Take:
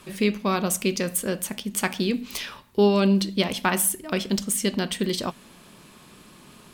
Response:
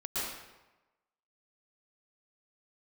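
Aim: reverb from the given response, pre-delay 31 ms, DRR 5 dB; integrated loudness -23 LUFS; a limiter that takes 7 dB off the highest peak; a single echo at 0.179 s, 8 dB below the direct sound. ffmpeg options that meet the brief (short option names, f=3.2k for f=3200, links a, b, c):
-filter_complex "[0:a]alimiter=limit=-15dB:level=0:latency=1,aecho=1:1:179:0.398,asplit=2[a][b];[1:a]atrim=start_sample=2205,adelay=31[c];[b][c]afir=irnorm=-1:irlink=0,volume=-10.5dB[d];[a][d]amix=inputs=2:normalize=0,volume=2dB"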